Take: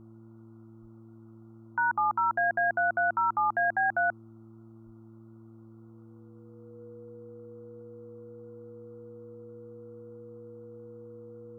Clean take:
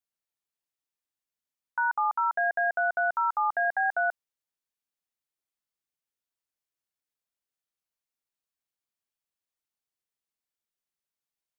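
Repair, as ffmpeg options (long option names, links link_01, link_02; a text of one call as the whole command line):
ffmpeg -i in.wav -filter_complex "[0:a]bandreject=frequency=112.3:width_type=h:width=4,bandreject=frequency=224.6:width_type=h:width=4,bandreject=frequency=336.9:width_type=h:width=4,bandreject=frequency=480:width=30,asplit=3[link_01][link_02][link_03];[link_01]afade=type=out:start_time=0.81:duration=0.02[link_04];[link_02]highpass=frequency=140:width=0.5412,highpass=frequency=140:width=1.3066,afade=type=in:start_time=0.81:duration=0.02,afade=type=out:start_time=0.93:duration=0.02[link_05];[link_03]afade=type=in:start_time=0.93:duration=0.02[link_06];[link_04][link_05][link_06]amix=inputs=3:normalize=0,asplit=3[link_07][link_08][link_09];[link_07]afade=type=out:start_time=4.85:duration=0.02[link_10];[link_08]highpass=frequency=140:width=0.5412,highpass=frequency=140:width=1.3066,afade=type=in:start_time=4.85:duration=0.02,afade=type=out:start_time=4.97:duration=0.02[link_11];[link_09]afade=type=in:start_time=4.97:duration=0.02[link_12];[link_10][link_11][link_12]amix=inputs=3:normalize=0,afftdn=noise_reduction=30:noise_floor=-51" out.wav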